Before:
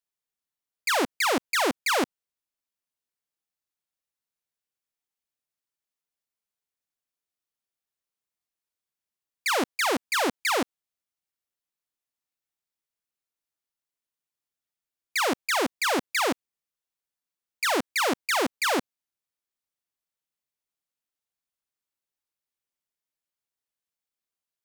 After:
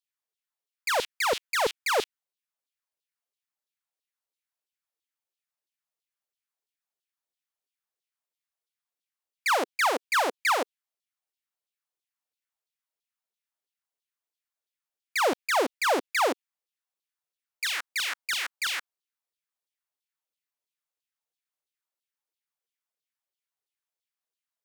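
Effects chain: LFO high-pass saw down 3 Hz 340–3900 Hz; gain -3.5 dB

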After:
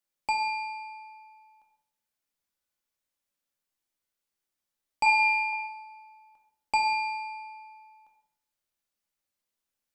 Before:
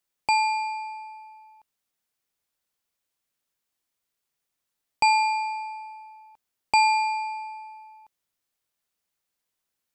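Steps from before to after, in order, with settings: 5.06–5.53 band shelf 1700 Hz +10 dB; resonator 71 Hz, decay 0.67 s, harmonics all, mix 60%; reverb RT60 0.85 s, pre-delay 3 ms, DRR 3.5 dB

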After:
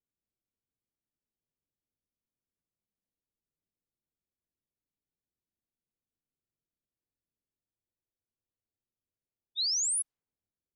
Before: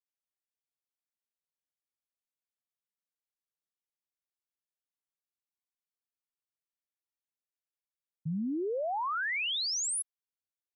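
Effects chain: low-pass opened by the level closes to 470 Hz; low shelf 480 Hz +11 dB; spectral freeze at 7.76, 1.81 s; gain +3 dB

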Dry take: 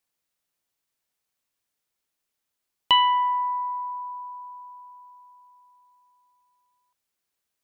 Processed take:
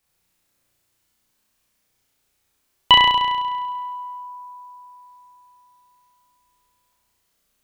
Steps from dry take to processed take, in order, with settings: low shelf 170 Hz +10 dB; flutter echo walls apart 5.8 m, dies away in 1.3 s; gain +6.5 dB

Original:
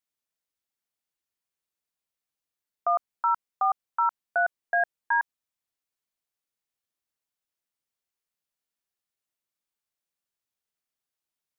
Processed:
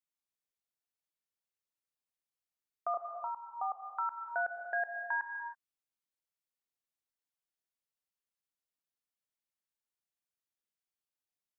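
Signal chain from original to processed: 2.94–3.86 steep low-pass 1200 Hz 72 dB/oct; dynamic EQ 950 Hz, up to -4 dB, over -34 dBFS, Q 2.1; reverb, pre-delay 99 ms, DRR 6.5 dB; gain -8.5 dB

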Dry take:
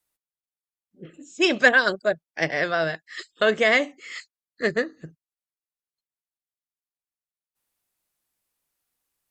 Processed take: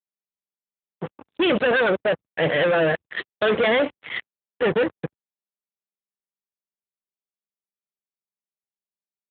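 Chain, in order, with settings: bell 500 Hz +10.5 dB 0.28 oct; fuzz box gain 32 dB, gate -38 dBFS; gain -3.5 dB; AMR-NB 12.2 kbps 8000 Hz

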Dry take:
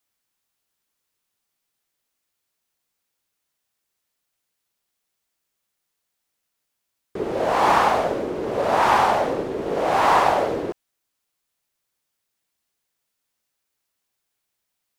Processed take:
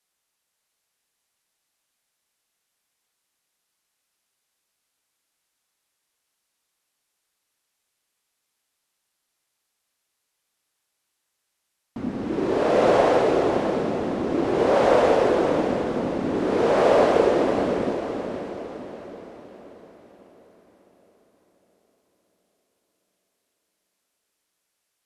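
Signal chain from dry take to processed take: low shelf 390 Hz -6 dB; wide varispeed 0.598×; diffused feedback echo 0.539 s, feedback 49%, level -7 dB

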